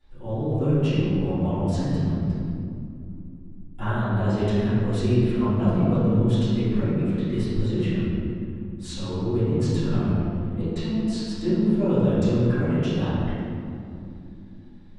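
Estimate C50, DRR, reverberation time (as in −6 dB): −4.5 dB, −19.0 dB, non-exponential decay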